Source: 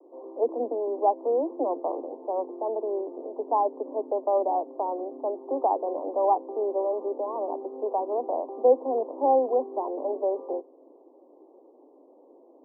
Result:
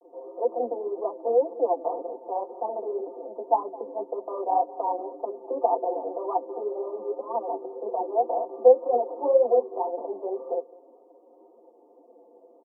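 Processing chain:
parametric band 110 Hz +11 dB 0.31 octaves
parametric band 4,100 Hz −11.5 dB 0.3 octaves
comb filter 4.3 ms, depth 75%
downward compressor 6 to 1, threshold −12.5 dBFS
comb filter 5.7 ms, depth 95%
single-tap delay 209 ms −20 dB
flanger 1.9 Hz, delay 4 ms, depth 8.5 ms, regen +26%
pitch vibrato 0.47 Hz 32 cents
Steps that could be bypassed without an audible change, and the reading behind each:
parametric band 110 Hz: nothing at its input below 230 Hz
parametric band 4,100 Hz: nothing at its input above 1,200 Hz

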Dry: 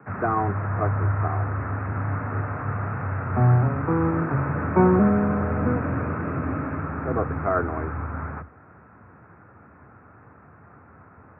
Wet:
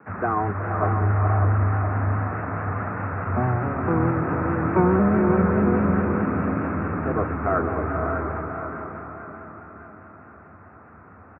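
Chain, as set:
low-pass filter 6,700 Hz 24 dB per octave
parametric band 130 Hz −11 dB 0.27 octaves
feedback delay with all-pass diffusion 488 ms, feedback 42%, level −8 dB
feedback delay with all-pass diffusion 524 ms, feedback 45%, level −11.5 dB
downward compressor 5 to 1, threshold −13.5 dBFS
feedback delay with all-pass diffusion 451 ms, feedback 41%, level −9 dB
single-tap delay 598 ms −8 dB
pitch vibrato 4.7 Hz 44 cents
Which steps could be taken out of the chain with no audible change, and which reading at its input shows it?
low-pass filter 6,700 Hz: nothing at its input above 1,700 Hz

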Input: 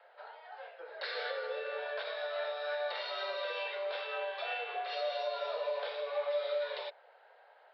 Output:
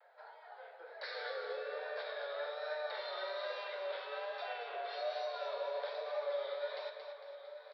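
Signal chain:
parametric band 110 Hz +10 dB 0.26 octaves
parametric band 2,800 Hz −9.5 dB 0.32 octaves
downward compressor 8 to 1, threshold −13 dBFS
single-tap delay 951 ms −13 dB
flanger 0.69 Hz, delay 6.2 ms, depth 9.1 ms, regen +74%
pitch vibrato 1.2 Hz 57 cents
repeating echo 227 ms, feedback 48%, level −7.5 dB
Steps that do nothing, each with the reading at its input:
parametric band 110 Hz: nothing at its input below 380 Hz
downward compressor, threshold −13 dBFS: peak of its input −25.0 dBFS

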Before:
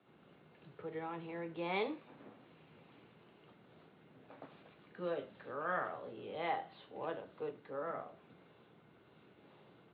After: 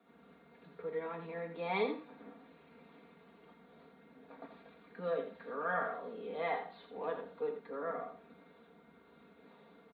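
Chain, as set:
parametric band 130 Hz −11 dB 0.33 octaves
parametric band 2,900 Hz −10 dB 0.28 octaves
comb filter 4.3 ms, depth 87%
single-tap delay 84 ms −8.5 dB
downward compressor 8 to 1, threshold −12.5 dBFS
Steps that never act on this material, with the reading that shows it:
downward compressor, threshold −12.5 dBFS: peak of its input −22.0 dBFS

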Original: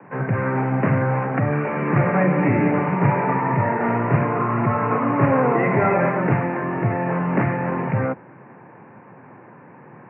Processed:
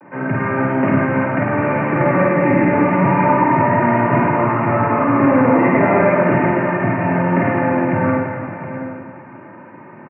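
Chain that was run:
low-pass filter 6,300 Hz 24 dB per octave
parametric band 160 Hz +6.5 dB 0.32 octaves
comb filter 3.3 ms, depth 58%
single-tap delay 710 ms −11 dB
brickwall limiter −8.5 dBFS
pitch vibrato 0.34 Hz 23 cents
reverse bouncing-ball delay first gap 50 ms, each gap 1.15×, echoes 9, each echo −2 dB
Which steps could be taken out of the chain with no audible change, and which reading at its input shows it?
low-pass filter 6,300 Hz: nothing at its input above 2,400 Hz

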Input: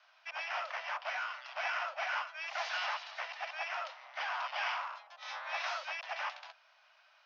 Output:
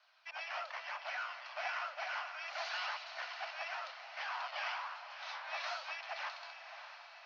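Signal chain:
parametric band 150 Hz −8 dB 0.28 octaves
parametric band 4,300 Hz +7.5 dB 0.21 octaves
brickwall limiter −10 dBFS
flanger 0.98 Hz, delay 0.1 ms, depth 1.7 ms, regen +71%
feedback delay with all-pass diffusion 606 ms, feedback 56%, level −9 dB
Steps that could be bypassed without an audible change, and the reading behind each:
parametric band 150 Hz: nothing at its input below 480 Hz
brickwall limiter −10 dBFS: peak of its input −22.0 dBFS

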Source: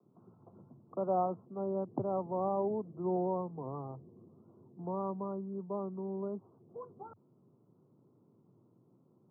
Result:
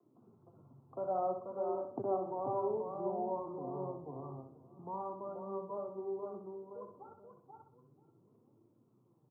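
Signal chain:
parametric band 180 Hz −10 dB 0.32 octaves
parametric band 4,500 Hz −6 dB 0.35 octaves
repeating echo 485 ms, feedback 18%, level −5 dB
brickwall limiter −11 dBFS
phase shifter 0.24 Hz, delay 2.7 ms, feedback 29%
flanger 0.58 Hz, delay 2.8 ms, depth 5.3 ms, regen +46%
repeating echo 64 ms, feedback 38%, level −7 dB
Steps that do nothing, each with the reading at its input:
parametric band 4,500 Hz: nothing at its input above 1,200 Hz
brickwall limiter −11 dBFS: peak of its input −21.0 dBFS

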